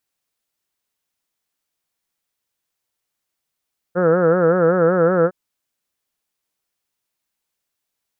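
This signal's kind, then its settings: formant-synthesis vowel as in heard, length 1.36 s, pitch 171 Hz, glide +0.5 st, vibrato depth 1.2 st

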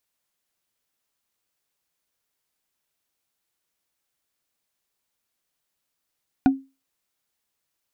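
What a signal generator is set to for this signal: wood hit, lowest mode 269 Hz, decay 0.27 s, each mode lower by 7 dB, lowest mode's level -9.5 dB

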